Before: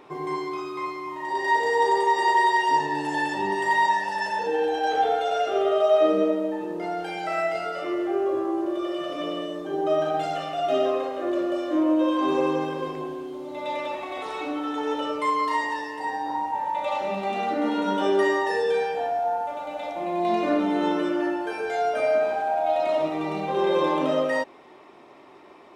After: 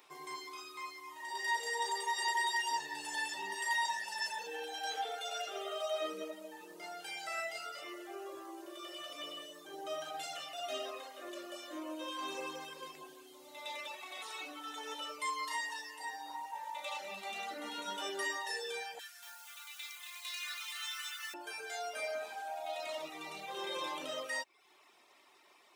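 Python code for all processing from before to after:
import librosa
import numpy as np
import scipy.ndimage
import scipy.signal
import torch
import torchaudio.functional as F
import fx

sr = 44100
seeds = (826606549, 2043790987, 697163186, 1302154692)

y = fx.chain(x, sr, fx.steep_highpass(hz=1200.0, slope=36),
    fx.high_shelf(hz=3000.0, db=6.5),
    fx.echo_crushed(ms=236, feedback_pct=35, bits=9, wet_db=-4.5), at=(18.99, 21.34))
y = fx.dereverb_blind(y, sr, rt60_s=0.6)
y = F.preemphasis(torch.from_numpy(y), 0.97).numpy()
y = y * librosa.db_to_amplitude(3.5)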